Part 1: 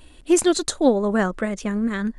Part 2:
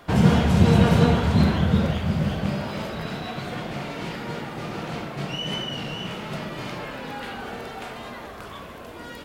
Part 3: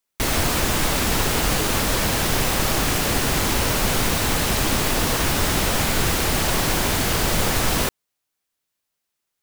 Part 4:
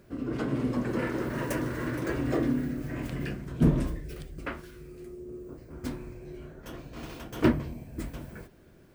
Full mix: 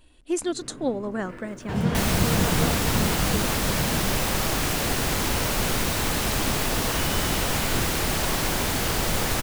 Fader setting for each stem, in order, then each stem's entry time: -9.0 dB, -7.5 dB, -4.0 dB, -11.5 dB; 0.00 s, 1.60 s, 1.75 s, 0.30 s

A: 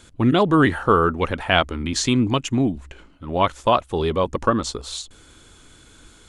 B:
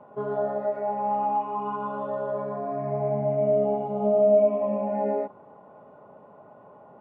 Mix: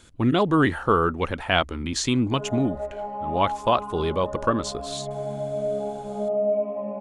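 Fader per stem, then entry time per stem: -3.5 dB, -4.5 dB; 0.00 s, 2.15 s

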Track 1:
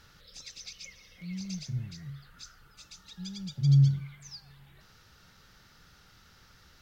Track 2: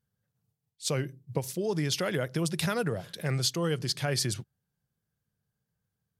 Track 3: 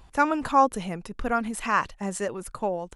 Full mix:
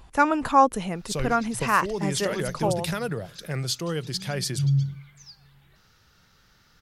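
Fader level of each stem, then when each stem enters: -1.5 dB, 0.0 dB, +2.0 dB; 0.95 s, 0.25 s, 0.00 s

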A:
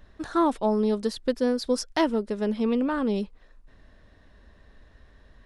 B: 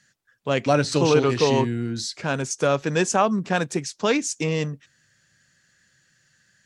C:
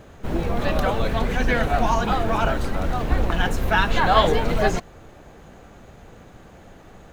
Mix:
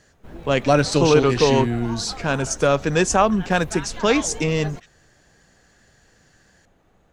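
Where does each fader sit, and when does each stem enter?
mute, +3.0 dB, -14.5 dB; mute, 0.00 s, 0.00 s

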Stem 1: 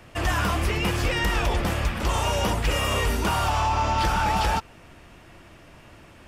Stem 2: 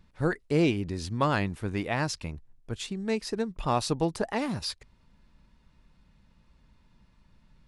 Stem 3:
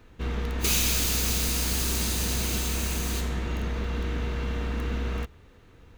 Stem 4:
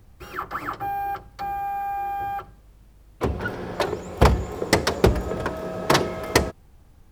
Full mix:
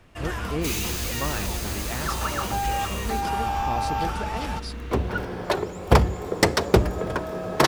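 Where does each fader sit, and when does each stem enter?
-8.5 dB, -5.5 dB, -5.5 dB, 0.0 dB; 0.00 s, 0.00 s, 0.00 s, 1.70 s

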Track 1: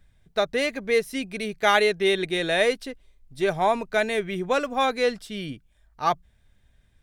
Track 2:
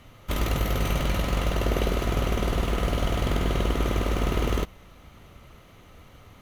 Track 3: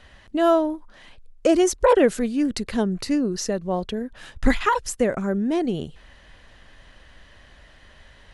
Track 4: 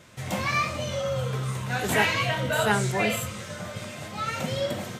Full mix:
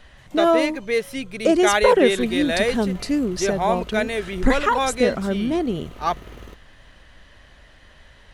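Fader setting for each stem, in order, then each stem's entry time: 0.0 dB, -15.5 dB, +0.5 dB, -20.0 dB; 0.00 s, 1.90 s, 0.00 s, 0.00 s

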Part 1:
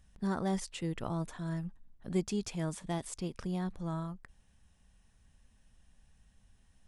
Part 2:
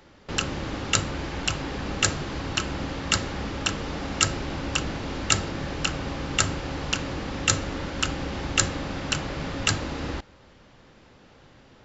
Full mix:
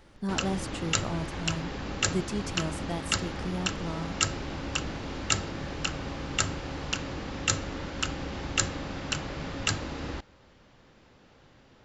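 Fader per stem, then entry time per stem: +1.5 dB, -4.5 dB; 0.00 s, 0.00 s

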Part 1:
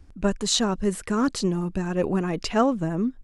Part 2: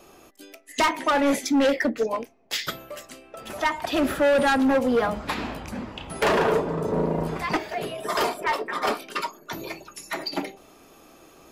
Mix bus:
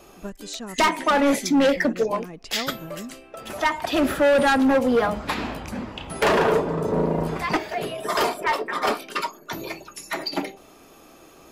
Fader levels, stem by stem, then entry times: -12.0 dB, +2.0 dB; 0.00 s, 0.00 s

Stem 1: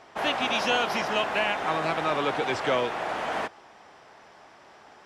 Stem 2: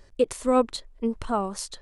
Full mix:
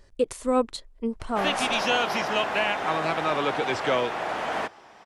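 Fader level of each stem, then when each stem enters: +1.0 dB, -2.0 dB; 1.20 s, 0.00 s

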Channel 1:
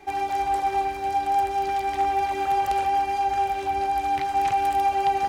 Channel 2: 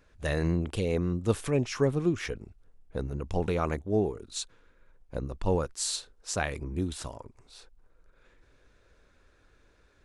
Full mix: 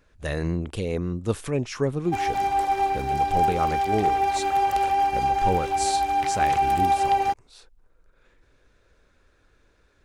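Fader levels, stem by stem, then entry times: +1.0 dB, +1.0 dB; 2.05 s, 0.00 s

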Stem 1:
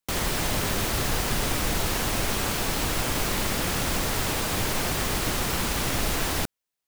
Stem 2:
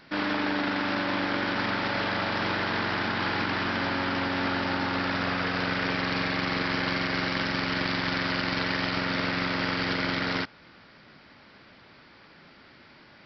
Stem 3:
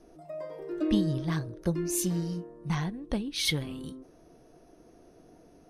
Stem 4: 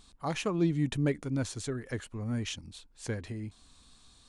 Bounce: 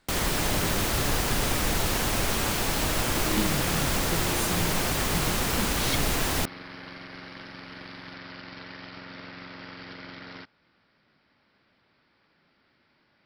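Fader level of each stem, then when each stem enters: 0.0 dB, -14.5 dB, -4.5 dB, -13.5 dB; 0.00 s, 0.00 s, 2.45 s, 0.00 s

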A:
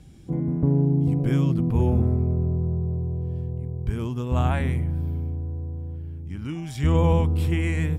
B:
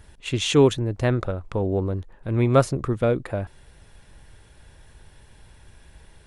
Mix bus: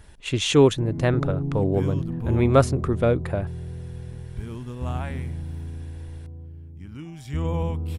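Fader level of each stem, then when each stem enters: -6.5 dB, +0.5 dB; 0.50 s, 0.00 s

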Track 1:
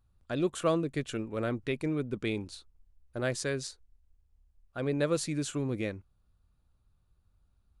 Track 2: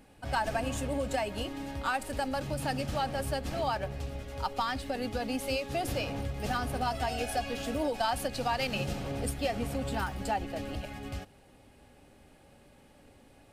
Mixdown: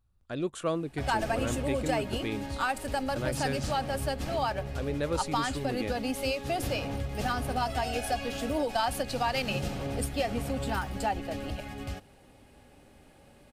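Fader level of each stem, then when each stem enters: -2.5 dB, +1.5 dB; 0.00 s, 0.75 s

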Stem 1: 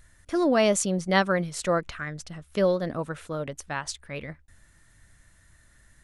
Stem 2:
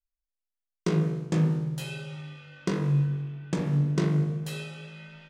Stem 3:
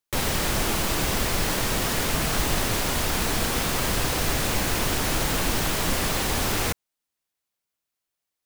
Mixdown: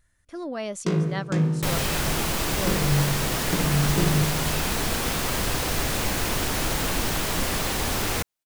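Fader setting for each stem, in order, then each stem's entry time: -10.5 dB, +1.5 dB, -1.0 dB; 0.00 s, 0.00 s, 1.50 s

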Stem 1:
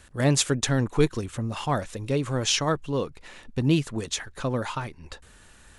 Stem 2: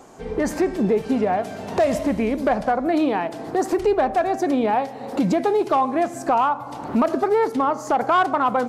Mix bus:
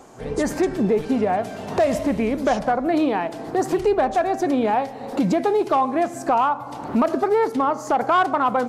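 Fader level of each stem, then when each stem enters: -15.5 dB, 0.0 dB; 0.00 s, 0.00 s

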